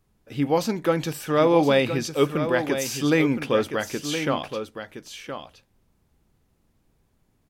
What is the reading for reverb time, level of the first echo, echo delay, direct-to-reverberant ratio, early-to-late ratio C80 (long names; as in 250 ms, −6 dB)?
no reverb audible, −9.0 dB, 1,018 ms, no reverb audible, no reverb audible